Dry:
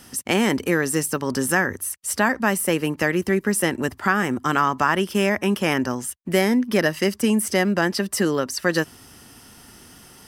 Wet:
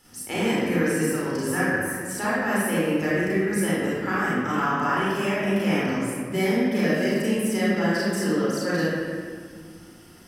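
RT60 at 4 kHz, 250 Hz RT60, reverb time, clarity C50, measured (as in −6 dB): 1.2 s, 2.8 s, 1.8 s, −3.5 dB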